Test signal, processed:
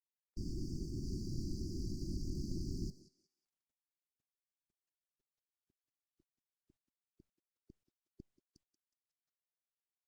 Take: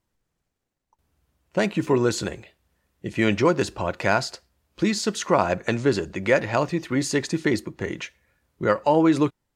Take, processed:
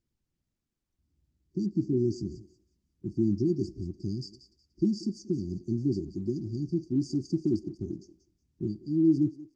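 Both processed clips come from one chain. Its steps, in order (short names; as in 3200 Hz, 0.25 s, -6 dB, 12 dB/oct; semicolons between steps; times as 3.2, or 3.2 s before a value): brick-wall FIR band-stop 390–4500 Hz; air absorption 200 m; thinning echo 0.183 s, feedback 27%, high-pass 560 Hz, level -12.5 dB; gain -3 dB; Opus 20 kbps 48000 Hz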